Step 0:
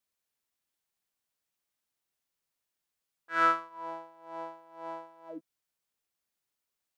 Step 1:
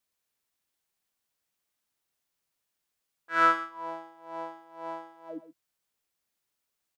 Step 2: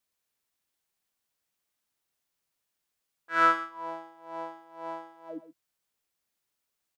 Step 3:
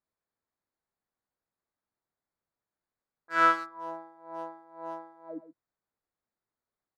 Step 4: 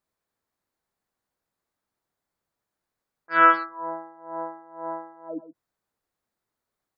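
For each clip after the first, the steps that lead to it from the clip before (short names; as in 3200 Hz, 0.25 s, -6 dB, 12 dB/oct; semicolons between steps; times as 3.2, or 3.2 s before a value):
echo 0.125 s -13.5 dB; gain +3 dB
nothing audible
Wiener smoothing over 15 samples
spectral gate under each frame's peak -30 dB strong; gain +6.5 dB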